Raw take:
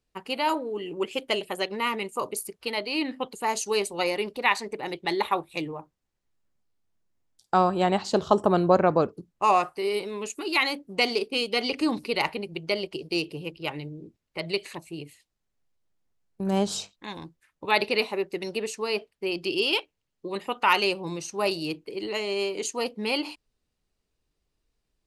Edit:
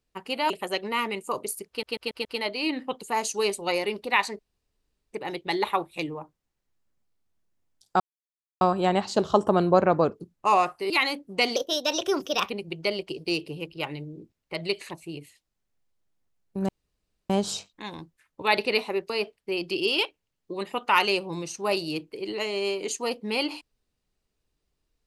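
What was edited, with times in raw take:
0:00.50–0:01.38: remove
0:02.57: stutter 0.14 s, 5 plays
0:04.71: splice in room tone 0.74 s
0:07.58: splice in silence 0.61 s
0:09.87–0:10.50: remove
0:11.16–0:12.34: play speed 126%
0:16.53: splice in room tone 0.61 s
0:18.33–0:18.84: remove

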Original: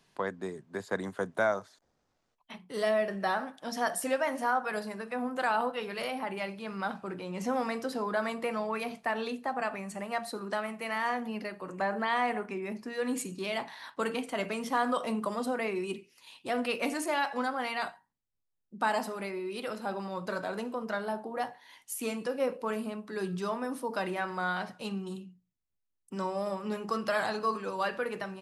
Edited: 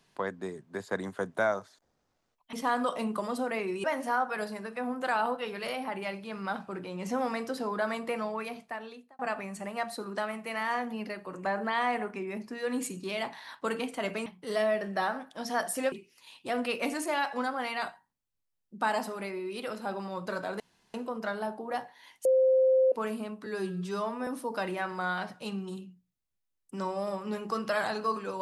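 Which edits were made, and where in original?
0:02.53–0:04.19: swap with 0:14.61–0:15.92
0:08.53–0:09.54: fade out
0:20.60: splice in room tone 0.34 s
0:21.91–0:22.58: beep over 522 Hz −19.5 dBFS
0:23.12–0:23.66: time-stretch 1.5×

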